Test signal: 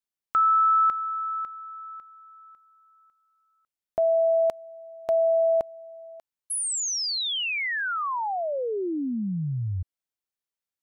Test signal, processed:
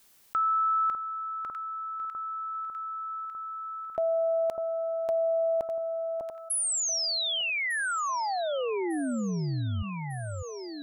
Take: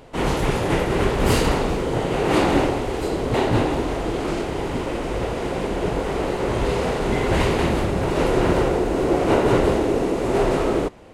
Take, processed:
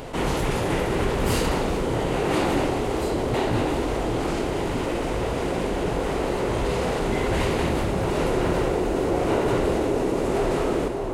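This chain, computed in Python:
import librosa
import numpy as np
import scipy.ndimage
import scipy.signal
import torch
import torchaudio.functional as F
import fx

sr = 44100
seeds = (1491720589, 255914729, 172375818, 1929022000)

p1 = fx.high_shelf(x, sr, hz=7900.0, db=4.5)
p2 = p1 + fx.echo_alternate(p1, sr, ms=600, hz=1300.0, feedback_pct=65, wet_db=-11.0, dry=0)
p3 = fx.env_flatten(p2, sr, amount_pct=50)
y = p3 * 10.0 ** (-6.0 / 20.0)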